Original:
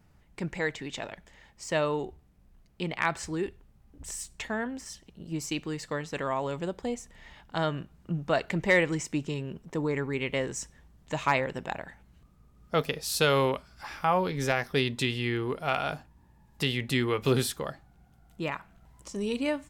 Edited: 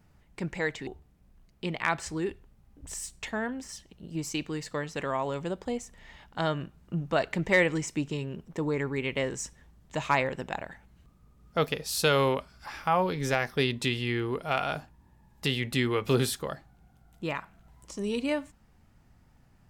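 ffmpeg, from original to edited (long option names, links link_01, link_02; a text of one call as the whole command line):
ffmpeg -i in.wav -filter_complex "[0:a]asplit=2[link_01][link_02];[link_01]atrim=end=0.872[link_03];[link_02]atrim=start=2.038[link_04];[link_03][link_04]acrossfade=duration=0.004:curve1=hsin:curve2=hsin" out.wav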